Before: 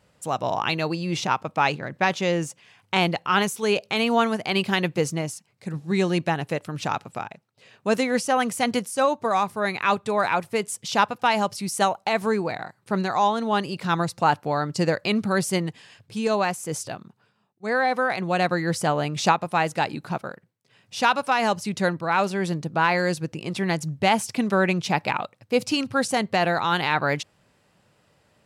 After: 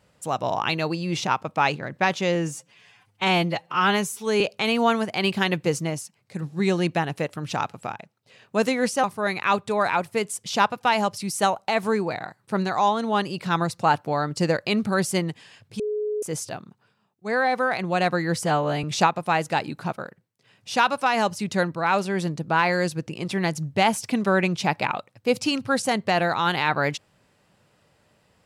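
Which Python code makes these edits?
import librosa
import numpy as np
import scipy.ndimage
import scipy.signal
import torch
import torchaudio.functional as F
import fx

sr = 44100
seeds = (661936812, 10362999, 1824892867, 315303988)

y = fx.edit(x, sr, fx.stretch_span(start_s=2.35, length_s=1.37, factor=1.5),
    fx.cut(start_s=8.35, length_s=1.07),
    fx.bleep(start_s=16.18, length_s=0.43, hz=422.0, db=-23.5),
    fx.stretch_span(start_s=18.83, length_s=0.26, factor=1.5), tone=tone)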